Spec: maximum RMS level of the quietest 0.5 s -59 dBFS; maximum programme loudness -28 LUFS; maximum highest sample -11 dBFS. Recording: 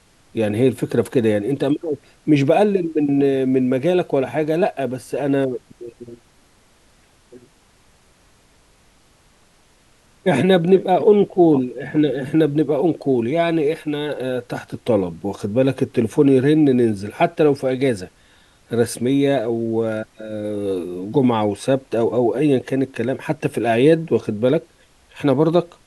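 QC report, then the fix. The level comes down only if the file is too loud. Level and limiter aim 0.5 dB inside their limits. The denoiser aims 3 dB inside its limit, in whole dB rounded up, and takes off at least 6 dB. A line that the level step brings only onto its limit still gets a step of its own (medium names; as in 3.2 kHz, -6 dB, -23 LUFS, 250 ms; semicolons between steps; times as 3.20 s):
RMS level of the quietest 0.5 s -55 dBFS: fail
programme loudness -19.0 LUFS: fail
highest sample -3.0 dBFS: fail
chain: trim -9.5 dB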